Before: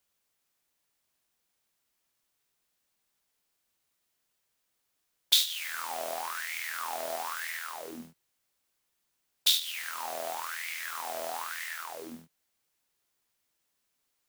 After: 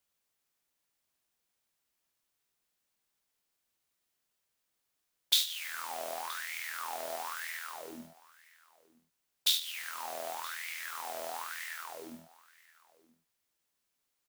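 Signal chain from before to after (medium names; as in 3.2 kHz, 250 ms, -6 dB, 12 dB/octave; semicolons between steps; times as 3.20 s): delay 973 ms -21.5 dB; trim -3.5 dB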